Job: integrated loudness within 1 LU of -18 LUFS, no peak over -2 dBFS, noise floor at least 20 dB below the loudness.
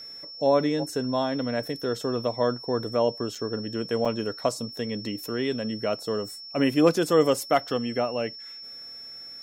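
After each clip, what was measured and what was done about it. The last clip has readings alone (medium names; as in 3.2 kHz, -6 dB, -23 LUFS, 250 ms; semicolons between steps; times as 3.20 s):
dropouts 2; longest dropout 4.9 ms; steady tone 5.4 kHz; tone level -39 dBFS; loudness -26.5 LUFS; peak level -7.5 dBFS; loudness target -18.0 LUFS
-> interpolate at 3.35/4.05 s, 4.9 ms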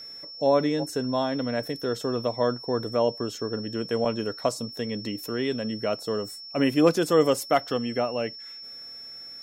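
dropouts 0; steady tone 5.4 kHz; tone level -39 dBFS
-> band-stop 5.4 kHz, Q 30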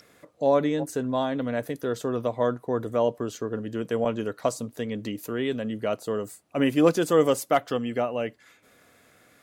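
steady tone not found; loudness -27.0 LUFS; peak level -7.5 dBFS; loudness target -18.0 LUFS
-> trim +9 dB; peak limiter -2 dBFS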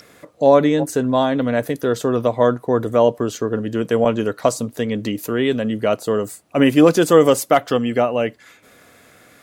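loudness -18.0 LUFS; peak level -2.0 dBFS; noise floor -50 dBFS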